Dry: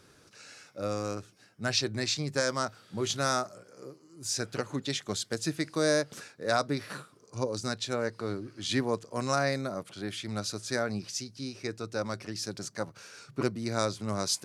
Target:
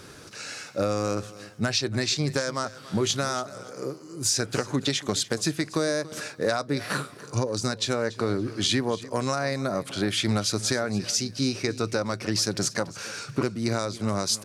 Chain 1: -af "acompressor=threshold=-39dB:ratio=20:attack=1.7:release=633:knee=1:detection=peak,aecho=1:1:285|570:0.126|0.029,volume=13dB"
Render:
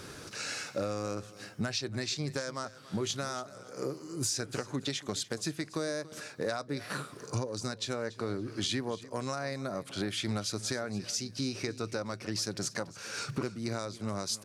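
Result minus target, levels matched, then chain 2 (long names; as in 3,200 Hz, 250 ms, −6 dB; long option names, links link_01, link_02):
downward compressor: peak gain reduction +8.5 dB
-af "acompressor=threshold=-30dB:ratio=20:attack=1.7:release=633:knee=1:detection=peak,aecho=1:1:285|570:0.126|0.029,volume=13dB"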